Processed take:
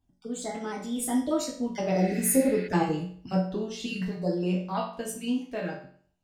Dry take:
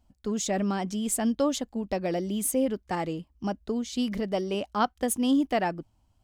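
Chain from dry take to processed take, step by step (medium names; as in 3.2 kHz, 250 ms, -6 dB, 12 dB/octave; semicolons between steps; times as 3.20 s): random holes in the spectrogram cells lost 23%; Doppler pass-by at 2.52 s, 33 m/s, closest 26 m; reverberation RT60 0.50 s, pre-delay 5 ms, DRR -3.5 dB; spectral replace 2.00–2.65 s, 1.4–4.8 kHz before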